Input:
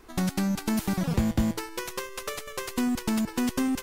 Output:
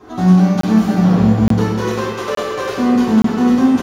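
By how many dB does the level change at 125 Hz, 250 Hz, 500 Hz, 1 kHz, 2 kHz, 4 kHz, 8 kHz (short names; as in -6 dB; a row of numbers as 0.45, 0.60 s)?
+16.0, +15.0, +15.5, +14.5, +9.5, +6.5, +1.0 dB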